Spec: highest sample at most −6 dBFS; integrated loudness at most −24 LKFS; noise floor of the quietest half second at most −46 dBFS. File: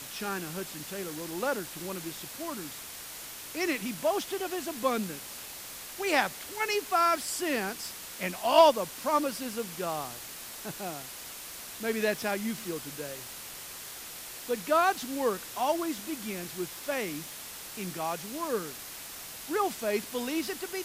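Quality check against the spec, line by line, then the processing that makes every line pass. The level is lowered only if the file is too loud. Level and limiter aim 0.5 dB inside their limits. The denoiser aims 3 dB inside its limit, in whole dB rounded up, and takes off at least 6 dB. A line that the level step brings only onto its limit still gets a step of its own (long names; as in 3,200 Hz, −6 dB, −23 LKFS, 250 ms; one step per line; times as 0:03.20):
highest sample −9.0 dBFS: in spec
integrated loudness −31.5 LKFS: in spec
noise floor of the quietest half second −43 dBFS: out of spec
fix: broadband denoise 6 dB, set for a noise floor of −43 dBFS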